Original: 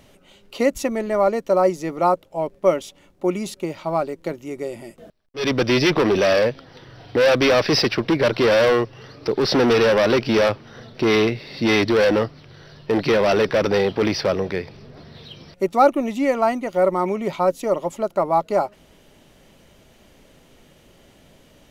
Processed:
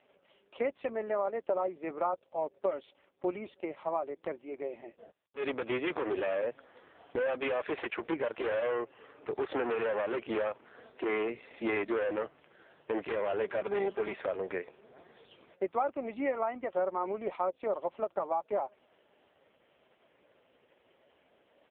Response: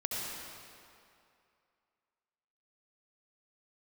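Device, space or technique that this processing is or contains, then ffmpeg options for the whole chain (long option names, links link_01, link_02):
voicemail: -filter_complex "[0:a]asplit=3[link_01][link_02][link_03];[link_01]afade=type=out:start_time=13.39:duration=0.02[link_04];[link_02]aecho=1:1:5:0.79,afade=type=in:start_time=13.39:duration=0.02,afade=type=out:start_time=14.17:duration=0.02[link_05];[link_03]afade=type=in:start_time=14.17:duration=0.02[link_06];[link_04][link_05][link_06]amix=inputs=3:normalize=0,highpass=410,lowpass=2600,acompressor=threshold=-21dB:ratio=8,volume=-5.5dB" -ar 8000 -c:a libopencore_amrnb -b:a 4750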